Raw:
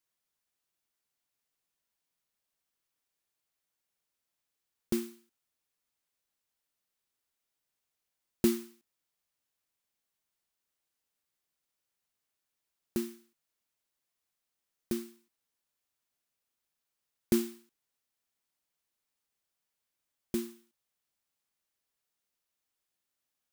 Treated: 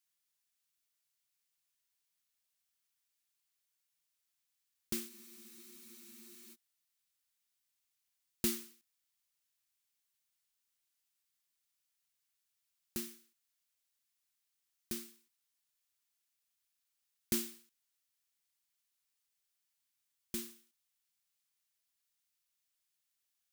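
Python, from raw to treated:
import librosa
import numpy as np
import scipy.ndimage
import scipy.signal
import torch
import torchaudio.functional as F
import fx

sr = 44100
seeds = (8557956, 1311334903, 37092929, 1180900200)

y = fx.tone_stack(x, sr, knobs='5-5-5')
y = fx.spec_freeze(y, sr, seeds[0], at_s=5.12, hold_s=1.41)
y = y * librosa.db_to_amplitude(8.0)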